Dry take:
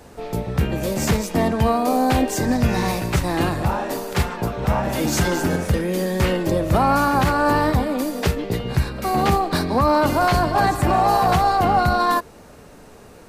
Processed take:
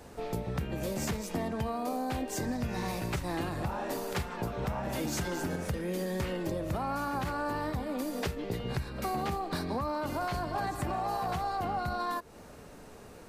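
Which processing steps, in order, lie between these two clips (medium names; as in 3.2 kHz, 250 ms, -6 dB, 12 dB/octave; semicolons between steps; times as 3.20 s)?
compression 6:1, threshold -25 dBFS, peak gain reduction 11.5 dB; trim -5.5 dB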